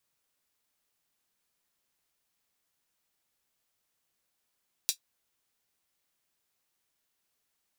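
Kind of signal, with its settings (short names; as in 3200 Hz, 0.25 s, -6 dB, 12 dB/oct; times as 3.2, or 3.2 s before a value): closed hi-hat, high-pass 4100 Hz, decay 0.10 s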